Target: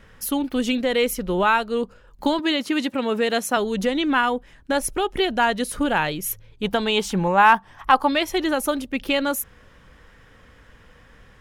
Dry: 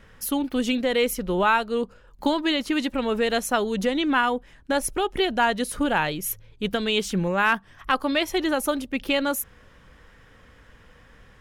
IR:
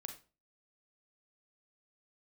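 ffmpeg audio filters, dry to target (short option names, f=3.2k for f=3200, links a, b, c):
-filter_complex "[0:a]asettb=1/sr,asplit=3[a][b][c];[a]atrim=end=2.394[d];[b]atrim=start=2.39:end=3.57,asetpts=PTS-STARTPTS,afade=t=in:d=0.004:c=qsin,afade=t=out:st=1.176:d=0.004:c=qsin,highpass=f=100:w=0.5412,highpass=f=100:w=1.3066[e];[c]atrim=start=3.566[f];[d][e]acrossfade=d=0.004:c1=hsin:c2=qsin[g];[g][f]acrossfade=d=0.004:c1=qsin:c2=hsin,asettb=1/sr,asplit=3[h][i][j];[h]atrim=end=6.634[k];[i]atrim=start=6.63:end=8.09,asetpts=PTS-STARTPTS,afade=t=in:d=0.004:c=qsin,afade=t=out:st=1.456:d=0.004:c=qsin,equalizer=f=870:w=2.4:g=12[l];[j]atrim=start=8.086[m];[k][l]acrossfade=d=0.004:c1=hsin:c2=qsin[n];[n][m]acrossfade=d=0.004:c1=qsin:c2=hsin,volume=1.5dB"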